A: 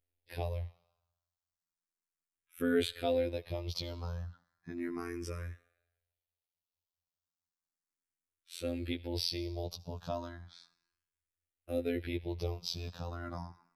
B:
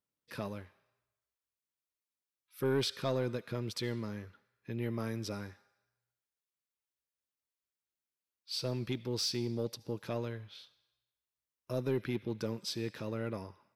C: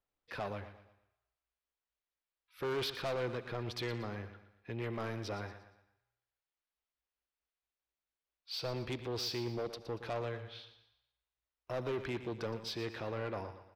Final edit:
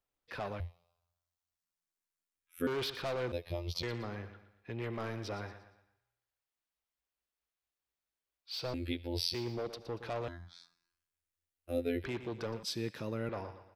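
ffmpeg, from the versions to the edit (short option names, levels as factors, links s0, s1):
-filter_complex "[0:a]asplit=4[s0][s1][s2][s3];[2:a]asplit=6[s4][s5][s6][s7][s8][s9];[s4]atrim=end=0.602[s10];[s0]atrim=start=0.598:end=2.672[s11];[s5]atrim=start=2.668:end=3.322[s12];[s1]atrim=start=3.318:end=3.832[s13];[s6]atrim=start=3.828:end=8.742[s14];[s2]atrim=start=8.738:end=9.342[s15];[s7]atrim=start=9.338:end=10.282[s16];[s3]atrim=start=10.278:end=12.042[s17];[s8]atrim=start=12.038:end=12.632[s18];[1:a]atrim=start=12.628:end=13.292[s19];[s9]atrim=start=13.288[s20];[s10][s11]acrossfade=d=0.004:c1=hsin:c2=hsin[s21];[s21][s12]acrossfade=d=0.004:c1=hsin:c2=hsin[s22];[s22][s13]acrossfade=d=0.004:c1=hsin:c2=hsin[s23];[s23][s14]acrossfade=d=0.004:c1=hsin:c2=hsin[s24];[s24][s15]acrossfade=d=0.004:c1=hsin:c2=hsin[s25];[s25][s16]acrossfade=d=0.004:c1=hsin:c2=hsin[s26];[s26][s17]acrossfade=d=0.004:c1=hsin:c2=hsin[s27];[s27][s18]acrossfade=d=0.004:c1=hsin:c2=hsin[s28];[s28][s19]acrossfade=d=0.004:c1=hsin:c2=hsin[s29];[s29][s20]acrossfade=d=0.004:c1=hsin:c2=hsin"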